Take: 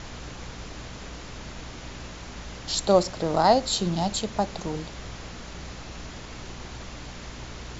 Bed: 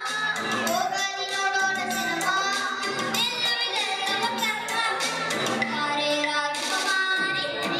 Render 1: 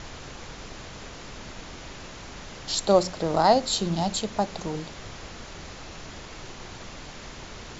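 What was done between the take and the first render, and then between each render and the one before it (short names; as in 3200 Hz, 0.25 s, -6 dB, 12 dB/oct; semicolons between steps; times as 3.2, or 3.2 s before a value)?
de-hum 60 Hz, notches 5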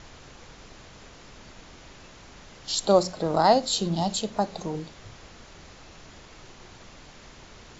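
noise print and reduce 7 dB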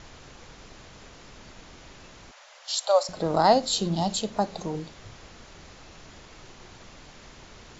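2.31–3.09 elliptic high-pass 560 Hz, stop band 50 dB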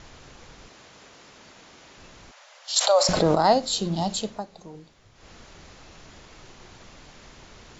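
0.68–1.98 HPF 270 Hz 6 dB/oct; 2.76–3.35 fast leveller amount 70%; 4.26–5.31 dip -11 dB, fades 0.17 s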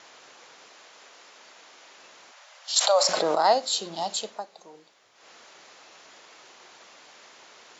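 HPF 520 Hz 12 dB/oct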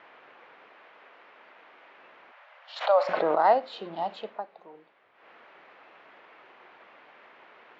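LPF 2500 Hz 24 dB/oct; low shelf 100 Hz -9.5 dB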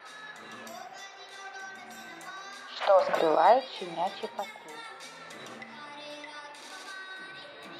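add bed -19 dB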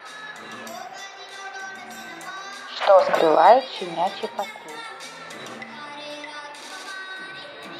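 gain +7.5 dB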